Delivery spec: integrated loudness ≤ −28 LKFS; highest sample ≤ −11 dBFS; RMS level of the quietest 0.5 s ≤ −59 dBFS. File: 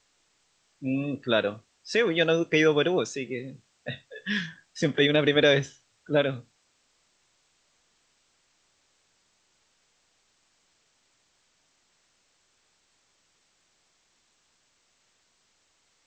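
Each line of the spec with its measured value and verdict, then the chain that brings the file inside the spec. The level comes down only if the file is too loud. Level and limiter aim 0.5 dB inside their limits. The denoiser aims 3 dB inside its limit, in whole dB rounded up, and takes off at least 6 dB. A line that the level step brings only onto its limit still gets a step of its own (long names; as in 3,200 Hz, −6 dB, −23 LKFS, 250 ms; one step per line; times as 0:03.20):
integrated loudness −25.5 LKFS: out of spec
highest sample −8.0 dBFS: out of spec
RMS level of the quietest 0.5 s −69 dBFS: in spec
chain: level −3 dB
brickwall limiter −11.5 dBFS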